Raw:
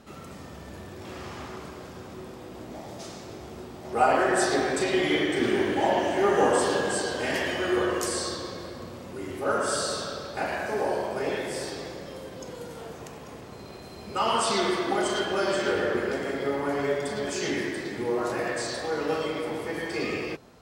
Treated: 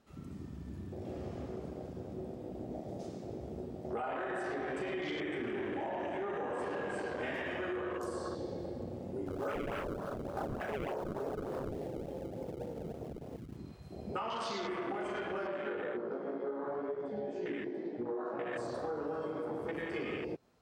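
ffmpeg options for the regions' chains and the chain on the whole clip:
-filter_complex "[0:a]asettb=1/sr,asplit=3[a][b][c];[a]atrim=end=9.264[d];[b]atrim=start=9.26:end=13.57,asetpts=PTS-STARTPTS,afade=t=in:d=0.004:c=qsin,afade=t=out:st=4.306:d=0.004:c=qsin,acrusher=samples=29:mix=1:aa=0.000001:lfo=1:lforange=46.4:lforate=3.4,volume=21.5dB,asoftclip=hard,volume=-21.5dB[e];[c]atrim=start=13.566[f];[d][e]acrossfade=d=0.004:c1=hsin:c2=qsin[g];[g][f]acrossfade=d=0.004:c1=qsin:c2=hsin,asettb=1/sr,asplit=3[h][i][j];[h]atrim=end=15.474[k];[i]atrim=start=15.47:end=18.53,asetpts=PTS-STARTPTS,afade=t=in:d=0.004:c=qsin,afade=t=out:st=3.056:d=0.004:c=qsin,highpass=160,lowpass=3.2k,flanger=delay=16.5:depth=3.1:speed=2[l];[j]atrim=start=18.526[m];[k][l]acrossfade=d=0.004:c1=hsin:c2=qsin[n];[n][m]acrossfade=d=0.004:c1=qsin:c2=hsin,afwtdn=0.0224,alimiter=limit=-20.5dB:level=0:latency=1:release=20,acompressor=threshold=-35dB:ratio=6"

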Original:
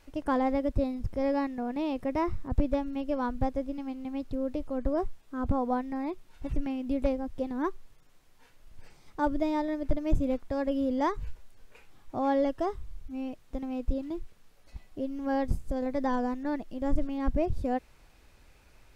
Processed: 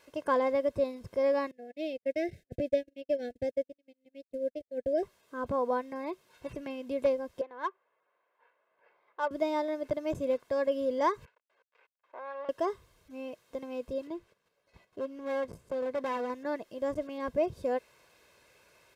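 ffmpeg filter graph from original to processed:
-filter_complex "[0:a]asettb=1/sr,asplit=3[a][b][c];[a]atrim=end=1.514[d];[b]atrim=start=1.51:end=5.03,asetpts=PTS-STARTPTS,afade=t=in:d=0.004:c=qsin,afade=t=out:st=3.516:d=0.004:c=qsin,agate=range=-54dB:threshold=-31dB:ratio=16:release=100:detection=peak,acompressor=mode=upward:threshold=-37dB:ratio=2.5:attack=3.2:release=140:knee=2.83:detection=peak,asuperstop=centerf=1100:order=12:qfactor=1.2[e];[c]atrim=start=5.026[f];[d][e]acrossfade=d=0.004:c1=hsin:c2=qsin[g];[g][f]acrossfade=d=0.004:c1=qsin:c2=hsin,asettb=1/sr,asplit=3[h][i][j];[h]atrim=end=7.414[k];[i]atrim=start=7.41:end=9.31,asetpts=PTS-STARTPTS,afade=t=in:d=0.004:c=qsin,afade=t=out:st=1.896:d=0.004:c=qsin,highpass=690,lowpass=2.7k,adynamicsmooth=sensitivity=6.5:basefreq=1.7k[l];[j]atrim=start=9.306[m];[k][l]acrossfade=d=0.004:c1=hsin:c2=qsin[n];[n][m]acrossfade=d=0.004:c1=qsin:c2=hsin,asettb=1/sr,asplit=3[o][p][q];[o]atrim=end=11.254[r];[p]atrim=start=11.25:end=12.49,asetpts=PTS-STARTPTS,afade=t=in:d=0.004:c=qsin,afade=t=out:st=1.236:d=0.004:c=qsin,acompressor=threshold=-36dB:ratio=2:attack=3.2:release=140:knee=1:detection=peak,aeval=exprs='max(val(0),0)':c=same,highpass=610,lowpass=2k[s];[q]atrim=start=12.486[t];[r][s]acrossfade=d=0.004:c1=hsin:c2=qsin[u];[u][t]acrossfade=d=0.004:c1=qsin:c2=hsin,asettb=1/sr,asplit=3[v][w][x];[v]atrim=end=14.074[y];[w]atrim=start=14.07:end=16.3,asetpts=PTS-STARTPTS,afade=t=in:d=0.004:c=qsin,afade=t=out:st=2.226:d=0.004:c=qsin,highshelf=f=4.5k:g=-9.5,volume=28.5dB,asoftclip=hard,volume=-28.5dB,agate=range=-9dB:threshold=-51dB:ratio=16:release=100:detection=peak[z];[x]atrim=start=16.296[aa];[y][z]acrossfade=d=0.004:c1=hsin:c2=qsin[ab];[ab][aa]acrossfade=d=0.004:c1=qsin:c2=hsin,highpass=220,aecho=1:1:1.9:0.56"

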